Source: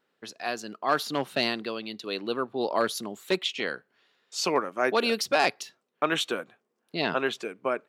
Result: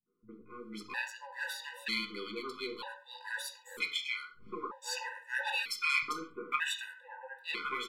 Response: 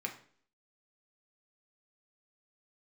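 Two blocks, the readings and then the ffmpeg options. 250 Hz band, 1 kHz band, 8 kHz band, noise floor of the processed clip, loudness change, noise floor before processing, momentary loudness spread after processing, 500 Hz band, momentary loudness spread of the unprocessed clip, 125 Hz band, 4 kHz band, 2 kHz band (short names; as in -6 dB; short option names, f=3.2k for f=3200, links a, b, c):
-14.5 dB, -11.0 dB, -7.5 dB, -60 dBFS, -8.0 dB, -78 dBFS, 14 LU, -18.5 dB, 11 LU, under -15 dB, -7.0 dB, -3.5 dB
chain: -filter_complex "[0:a]aeval=exprs='if(lt(val(0),0),0.708*val(0),val(0))':c=same,acrossover=split=710|3900[a][b][c];[a]acompressor=threshold=-43dB:ratio=6[d];[d][b][c]amix=inputs=3:normalize=0,asuperstop=centerf=670:order=8:qfactor=2.1,acrossover=split=160|1100[e][f][g];[f]adelay=60[h];[g]adelay=500[i];[e][h][i]amix=inputs=3:normalize=0[j];[1:a]atrim=start_sample=2205,atrim=end_sample=6615,asetrate=43659,aresample=44100[k];[j][k]afir=irnorm=-1:irlink=0,afftfilt=real='re*gt(sin(2*PI*0.53*pts/sr)*(1-2*mod(floor(b*sr/1024/500),2)),0)':imag='im*gt(sin(2*PI*0.53*pts/sr)*(1-2*mod(floor(b*sr/1024/500),2)),0)':win_size=1024:overlap=0.75"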